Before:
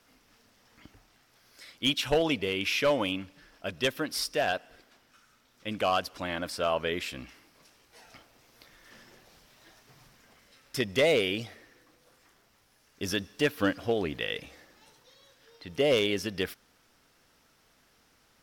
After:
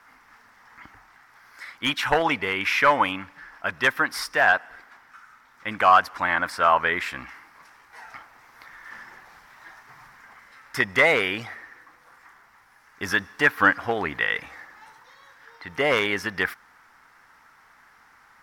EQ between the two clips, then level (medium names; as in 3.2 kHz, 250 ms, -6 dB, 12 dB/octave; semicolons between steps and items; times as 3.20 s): high-order bell 1.3 kHz +15.5 dB; 0.0 dB